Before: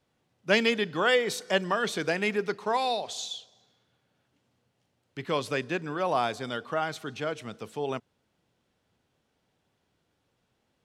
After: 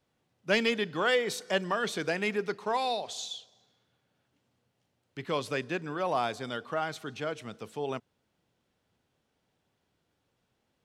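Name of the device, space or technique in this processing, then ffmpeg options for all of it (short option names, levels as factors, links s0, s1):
parallel distortion: -filter_complex "[0:a]asplit=2[s0][s1];[s1]asoftclip=type=hard:threshold=0.0891,volume=0.282[s2];[s0][s2]amix=inputs=2:normalize=0,volume=0.596"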